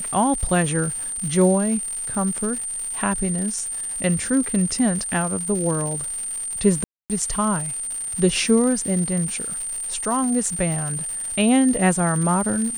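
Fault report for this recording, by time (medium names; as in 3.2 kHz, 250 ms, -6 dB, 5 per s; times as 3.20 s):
crackle 280 per s -29 dBFS
whine 8.9 kHz -26 dBFS
6.84–7.10 s: dropout 258 ms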